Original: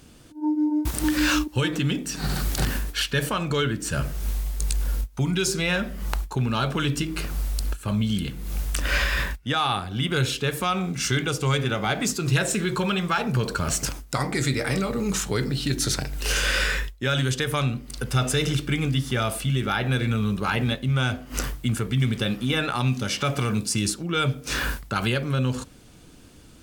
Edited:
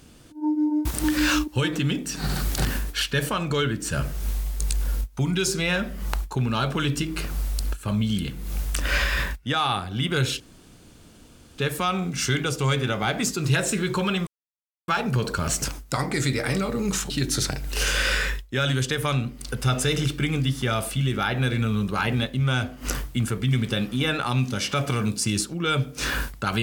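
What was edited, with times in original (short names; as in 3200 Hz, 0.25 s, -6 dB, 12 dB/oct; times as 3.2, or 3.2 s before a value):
10.4 insert room tone 1.18 s
13.09 insert silence 0.61 s
15.31–15.59 cut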